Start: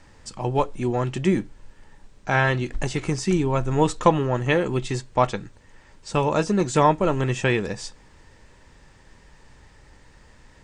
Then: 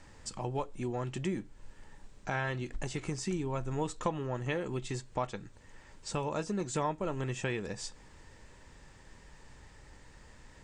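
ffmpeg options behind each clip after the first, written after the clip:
-af "acompressor=threshold=0.0178:ratio=2,equalizer=f=7500:w=3.3:g=3.5,volume=0.668"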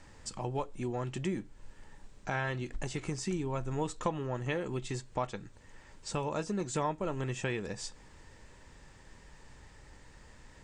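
-af anull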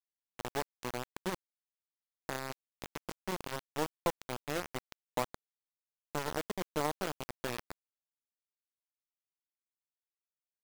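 -af "bandpass=f=470:t=q:w=0.84:csg=0,aeval=exprs='0.126*(cos(1*acos(clip(val(0)/0.126,-1,1)))-cos(1*PI/2))+0.0112*(cos(7*acos(clip(val(0)/0.126,-1,1)))-cos(7*PI/2))':c=same,acrusher=bits=5:mix=0:aa=0.000001,volume=1.41"

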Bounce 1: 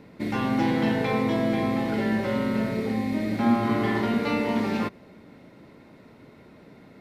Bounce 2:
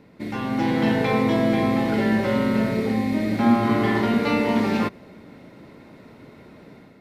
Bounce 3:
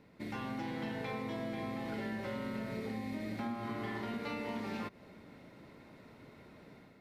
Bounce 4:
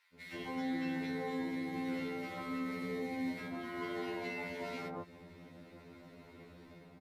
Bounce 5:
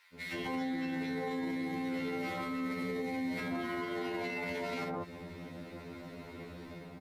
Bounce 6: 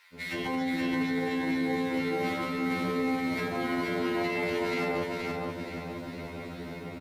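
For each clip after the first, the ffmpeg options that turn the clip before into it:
-af "dynaudnorm=f=450:g=3:m=2.24,volume=0.75"
-af "equalizer=f=280:t=o:w=2.4:g=-3.5,acompressor=threshold=0.0355:ratio=6,volume=0.422"
-filter_complex "[0:a]acrossover=split=1300[s0][s1];[s0]adelay=140[s2];[s2][s1]amix=inputs=2:normalize=0,afftfilt=real='re*2*eq(mod(b,4),0)':imag='im*2*eq(mod(b,4),0)':win_size=2048:overlap=0.75,volume=1.41"
-af "alimiter=level_in=4.73:limit=0.0631:level=0:latency=1:release=36,volume=0.211,volume=2.66"
-af "aecho=1:1:474|948|1422|1896|2370:0.708|0.297|0.125|0.0525|0.022,volume=1.78"

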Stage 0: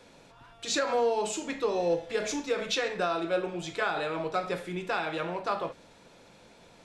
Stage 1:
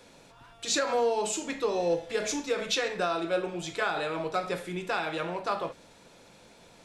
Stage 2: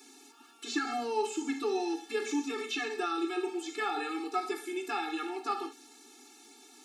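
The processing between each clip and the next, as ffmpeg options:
-af "highshelf=f=6900:g=7"
-filter_complex "[0:a]bass=f=250:g=9,treble=f=4000:g=11,acrossover=split=3000[s0][s1];[s1]acompressor=threshold=0.00708:ratio=4:attack=1:release=60[s2];[s0][s2]amix=inputs=2:normalize=0,afftfilt=real='re*eq(mod(floor(b*sr/1024/230),2),1)':imag='im*eq(mod(floor(b*sr/1024/230),2),1)':win_size=1024:overlap=0.75"

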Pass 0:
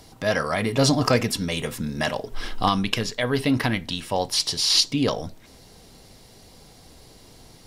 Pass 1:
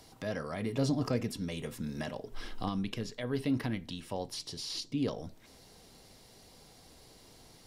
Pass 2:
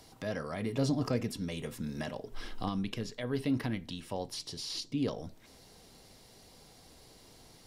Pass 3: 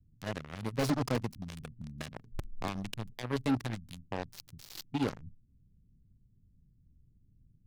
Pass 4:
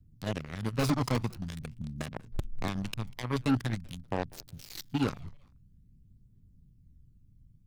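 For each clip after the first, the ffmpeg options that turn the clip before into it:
-filter_complex "[0:a]lowshelf=f=200:g=-4.5,acrossover=split=450[s0][s1];[s1]acompressor=threshold=0.00794:ratio=2[s2];[s0][s2]amix=inputs=2:normalize=0,volume=0.473"
-af anull
-filter_complex "[0:a]acrossover=split=180[s0][s1];[s0]aeval=exprs='(mod(33.5*val(0)+1,2)-1)/33.5':c=same[s2];[s1]acrusher=bits=4:mix=0:aa=0.5[s3];[s2][s3]amix=inputs=2:normalize=0"
-filter_complex "[0:a]asplit=3[s0][s1][s2];[s1]adelay=195,afreqshift=-140,volume=0.0668[s3];[s2]adelay=390,afreqshift=-280,volume=0.024[s4];[s0][s3][s4]amix=inputs=3:normalize=0,aphaser=in_gain=1:out_gain=1:delay=1:decay=0.35:speed=0.47:type=triangular,volume=1.26"

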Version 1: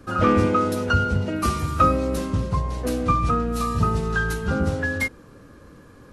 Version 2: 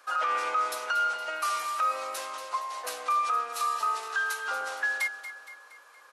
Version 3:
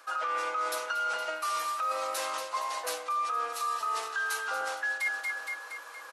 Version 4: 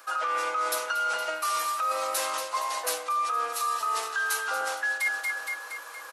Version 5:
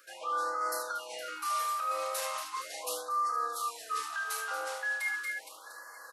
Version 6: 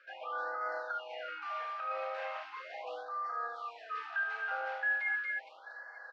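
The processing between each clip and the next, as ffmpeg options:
-filter_complex "[0:a]highpass=f=750:w=0.5412,highpass=f=750:w=1.3066,alimiter=limit=0.1:level=0:latency=1:release=83,asplit=2[s0][s1];[s1]aecho=0:1:233|466|699|932|1165:0.251|0.126|0.0628|0.0314|0.0157[s2];[s0][s2]amix=inputs=2:normalize=0"
-af "aecho=1:1:6.1:0.39,areverse,acompressor=threshold=0.0112:ratio=5,areverse,volume=2.66"
-af "highshelf=f=9700:g=9.5,volume=1.41"
-filter_complex "[0:a]asplit=2[s0][s1];[s1]aecho=0:1:32|74:0.531|0.422[s2];[s0][s2]amix=inputs=2:normalize=0,afftfilt=real='re*(1-between(b*sr/1024,210*pow(3000/210,0.5+0.5*sin(2*PI*0.38*pts/sr))/1.41,210*pow(3000/210,0.5+0.5*sin(2*PI*0.38*pts/sr))*1.41))':imag='im*(1-between(b*sr/1024,210*pow(3000/210,0.5+0.5*sin(2*PI*0.38*pts/sr))/1.41,210*pow(3000/210,0.5+0.5*sin(2*PI*0.38*pts/sr))*1.41))':win_size=1024:overlap=0.75,volume=0.398"
-filter_complex "[0:a]aemphasis=mode=reproduction:type=bsi,acrossover=split=2800[s0][s1];[s1]acompressor=threshold=0.00282:ratio=4:attack=1:release=60[s2];[s0][s2]amix=inputs=2:normalize=0,highpass=f=440:w=0.5412,highpass=f=440:w=1.3066,equalizer=f=460:t=q:w=4:g=-5,equalizer=f=740:t=q:w=4:g=7,equalizer=f=1100:t=q:w=4:g=-10,equalizer=f=1600:t=q:w=4:g=6,equalizer=f=2500:t=q:w=4:g=4,equalizer=f=3900:t=q:w=4:g=-4,lowpass=f=4100:w=0.5412,lowpass=f=4100:w=1.3066,volume=0.841"

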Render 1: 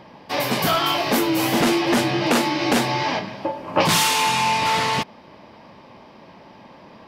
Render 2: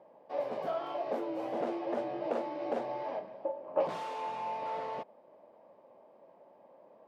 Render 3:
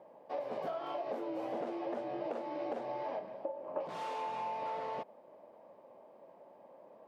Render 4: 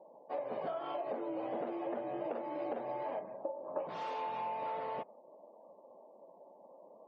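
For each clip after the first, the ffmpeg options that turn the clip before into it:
-af "bandpass=f=570:t=q:w=3.1:csg=0,volume=0.473"
-af "acompressor=threshold=0.0158:ratio=12,volume=1.19"
-af "afftdn=nr=25:nf=-61"

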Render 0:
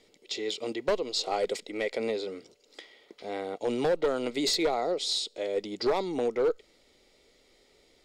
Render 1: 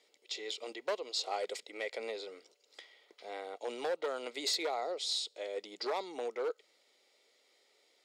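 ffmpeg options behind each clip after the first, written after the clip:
-af "highpass=550,volume=0.562"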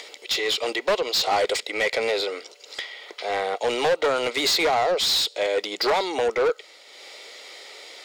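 -filter_complex "[0:a]acompressor=mode=upward:threshold=0.00178:ratio=2.5,asplit=2[s0][s1];[s1]highpass=f=720:p=1,volume=11.2,asoftclip=type=tanh:threshold=0.0891[s2];[s0][s2]amix=inputs=2:normalize=0,lowpass=f=5000:p=1,volume=0.501,volume=2.51"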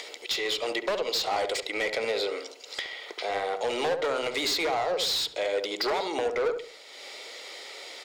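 -filter_complex "[0:a]acompressor=threshold=0.0355:ratio=2.5,asplit=2[s0][s1];[s1]adelay=70,lowpass=f=840:p=1,volume=0.562,asplit=2[s2][s3];[s3]adelay=70,lowpass=f=840:p=1,volume=0.4,asplit=2[s4][s5];[s5]adelay=70,lowpass=f=840:p=1,volume=0.4,asplit=2[s6][s7];[s7]adelay=70,lowpass=f=840:p=1,volume=0.4,asplit=2[s8][s9];[s9]adelay=70,lowpass=f=840:p=1,volume=0.4[s10];[s2][s4][s6][s8][s10]amix=inputs=5:normalize=0[s11];[s0][s11]amix=inputs=2:normalize=0"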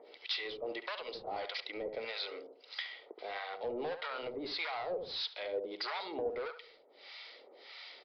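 -filter_complex "[0:a]acrossover=split=780[s0][s1];[s0]aeval=exprs='val(0)*(1-1/2+1/2*cos(2*PI*1.6*n/s))':c=same[s2];[s1]aeval=exprs='val(0)*(1-1/2-1/2*cos(2*PI*1.6*n/s))':c=same[s3];[s2][s3]amix=inputs=2:normalize=0,aresample=11025,aresample=44100,volume=0.531"

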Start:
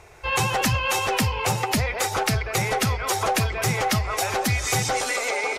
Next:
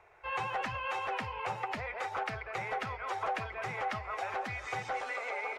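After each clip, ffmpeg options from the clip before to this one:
-filter_complex "[0:a]acrossover=split=8500[s0][s1];[s1]acompressor=threshold=0.00447:ratio=4:attack=1:release=60[s2];[s0][s2]amix=inputs=2:normalize=0,acrossover=split=500 2600:gain=0.224 1 0.1[s3][s4][s5];[s3][s4][s5]amix=inputs=3:normalize=0,volume=0.376"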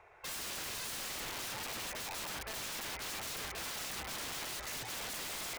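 -af "aeval=exprs='(mod(75*val(0)+1,2)-1)/75':c=same,volume=1.12"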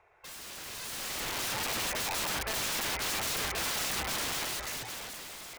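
-af "dynaudnorm=f=200:g=11:m=4.47,volume=0.596"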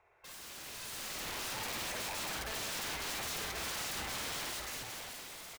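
-filter_complex "[0:a]asoftclip=type=tanh:threshold=0.0266,asplit=2[s0][s1];[s1]aecho=0:1:52.48|183.7:0.562|0.316[s2];[s0][s2]amix=inputs=2:normalize=0,volume=0.562"

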